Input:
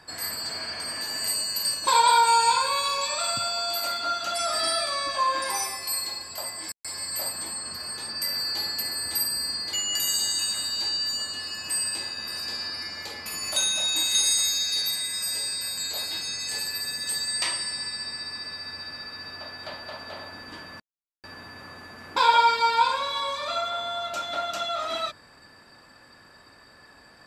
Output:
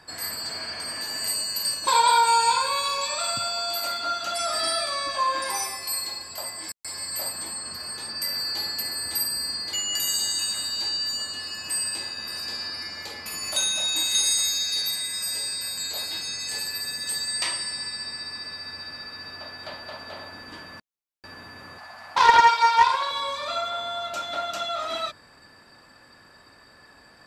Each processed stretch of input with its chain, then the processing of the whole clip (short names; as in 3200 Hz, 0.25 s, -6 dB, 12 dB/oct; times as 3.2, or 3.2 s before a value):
21.78–23.11 resonant low shelf 540 Hz -9.5 dB, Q 3 + Doppler distortion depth 0.17 ms
whole clip: dry